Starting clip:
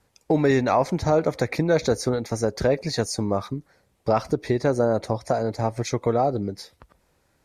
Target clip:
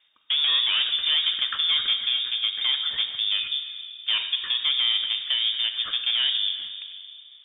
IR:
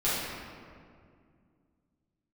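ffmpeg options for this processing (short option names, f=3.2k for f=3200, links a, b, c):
-filter_complex "[0:a]aeval=exprs='(tanh(12.6*val(0)+0.3)-tanh(0.3))/12.6':c=same,asplit=2[a][b];[1:a]atrim=start_sample=2205,adelay=31[c];[b][c]afir=irnorm=-1:irlink=0,volume=-18dB[d];[a][d]amix=inputs=2:normalize=0,lowpass=f=3.1k:t=q:w=0.5098,lowpass=f=3.1k:t=q:w=0.6013,lowpass=f=3.1k:t=q:w=0.9,lowpass=f=3.1k:t=q:w=2.563,afreqshift=-3700,volume=2dB"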